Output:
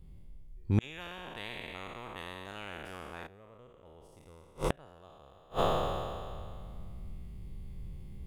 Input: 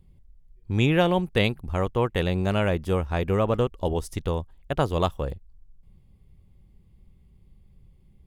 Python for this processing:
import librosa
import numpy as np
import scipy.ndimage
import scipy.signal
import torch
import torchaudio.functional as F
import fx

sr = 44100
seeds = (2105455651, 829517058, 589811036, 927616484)

y = fx.spec_trails(x, sr, decay_s=2.2)
y = fx.rider(y, sr, range_db=10, speed_s=0.5)
y = fx.gate_flip(y, sr, shuts_db=-15.0, range_db=-37)
y = fx.spectral_comp(y, sr, ratio=10.0, at=(0.8, 3.26), fade=0.02)
y = y * librosa.db_to_amplitude(2.5)